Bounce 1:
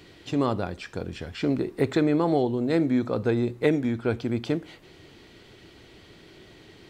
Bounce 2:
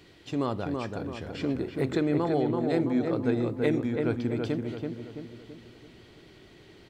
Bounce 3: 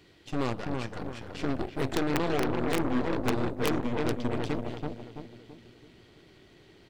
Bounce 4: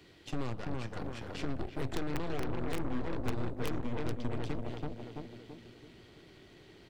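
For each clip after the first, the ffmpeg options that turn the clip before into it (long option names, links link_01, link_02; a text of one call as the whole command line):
ffmpeg -i in.wav -filter_complex "[0:a]asplit=2[link_01][link_02];[link_02]adelay=332,lowpass=frequency=1900:poles=1,volume=-3.5dB,asplit=2[link_03][link_04];[link_04]adelay=332,lowpass=frequency=1900:poles=1,volume=0.49,asplit=2[link_05][link_06];[link_06]adelay=332,lowpass=frequency=1900:poles=1,volume=0.49,asplit=2[link_07][link_08];[link_08]adelay=332,lowpass=frequency=1900:poles=1,volume=0.49,asplit=2[link_09][link_10];[link_10]adelay=332,lowpass=frequency=1900:poles=1,volume=0.49,asplit=2[link_11][link_12];[link_12]adelay=332,lowpass=frequency=1900:poles=1,volume=0.49[link_13];[link_01][link_03][link_05][link_07][link_09][link_11][link_13]amix=inputs=7:normalize=0,volume=-4.5dB" out.wav
ffmpeg -i in.wav -af "aeval=exprs='(mod(5.96*val(0)+1,2)-1)/5.96':channel_layout=same,aeval=exprs='0.168*(cos(1*acos(clip(val(0)/0.168,-1,1)))-cos(1*PI/2))+0.0376*(cos(8*acos(clip(val(0)/0.168,-1,1)))-cos(8*PI/2))':channel_layout=same,volume=-3.5dB" out.wav
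ffmpeg -i in.wav -filter_complex "[0:a]acrossover=split=120[link_01][link_02];[link_02]acompressor=threshold=-38dB:ratio=3[link_03];[link_01][link_03]amix=inputs=2:normalize=0" out.wav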